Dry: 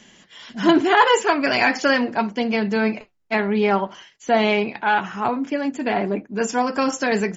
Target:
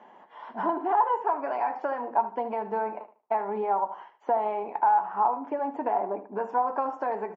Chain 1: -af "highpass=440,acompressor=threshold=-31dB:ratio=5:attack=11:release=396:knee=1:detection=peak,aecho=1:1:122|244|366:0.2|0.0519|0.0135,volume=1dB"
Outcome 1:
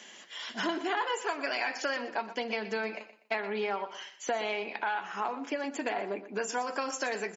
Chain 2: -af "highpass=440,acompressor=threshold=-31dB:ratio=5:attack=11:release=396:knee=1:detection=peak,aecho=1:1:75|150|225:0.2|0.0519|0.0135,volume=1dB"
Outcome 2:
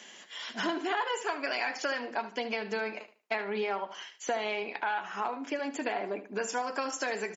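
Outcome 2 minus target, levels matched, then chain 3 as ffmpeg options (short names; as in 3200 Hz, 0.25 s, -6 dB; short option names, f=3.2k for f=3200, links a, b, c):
1000 Hz band -4.5 dB
-af "highpass=440,acompressor=threshold=-31dB:ratio=5:attack=11:release=396:knee=1:detection=peak,lowpass=f=900:t=q:w=4.4,aecho=1:1:75|150|225:0.2|0.0519|0.0135,volume=1dB"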